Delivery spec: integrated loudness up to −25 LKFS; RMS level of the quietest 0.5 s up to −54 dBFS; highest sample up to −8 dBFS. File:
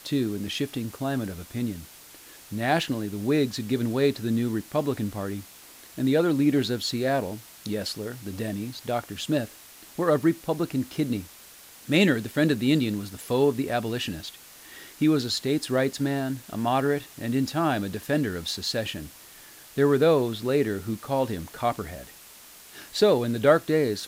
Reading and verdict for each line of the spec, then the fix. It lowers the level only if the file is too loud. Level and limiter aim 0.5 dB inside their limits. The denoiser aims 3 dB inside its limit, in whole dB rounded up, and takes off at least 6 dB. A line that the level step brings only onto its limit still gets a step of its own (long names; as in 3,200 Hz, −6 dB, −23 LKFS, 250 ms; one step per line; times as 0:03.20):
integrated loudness −26.0 LKFS: in spec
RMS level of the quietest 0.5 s −49 dBFS: out of spec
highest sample −7.0 dBFS: out of spec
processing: broadband denoise 8 dB, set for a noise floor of −49 dBFS
brickwall limiter −8.5 dBFS